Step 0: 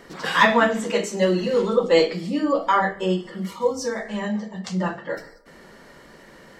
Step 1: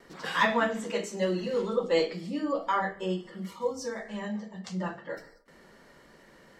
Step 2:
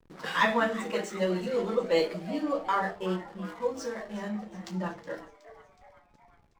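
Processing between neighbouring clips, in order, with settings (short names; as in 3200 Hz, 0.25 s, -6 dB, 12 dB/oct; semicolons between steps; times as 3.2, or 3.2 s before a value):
gate with hold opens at -40 dBFS; gain -8.5 dB
backlash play -42.5 dBFS; frequency-shifting echo 0.369 s, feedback 57%, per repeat +130 Hz, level -16 dB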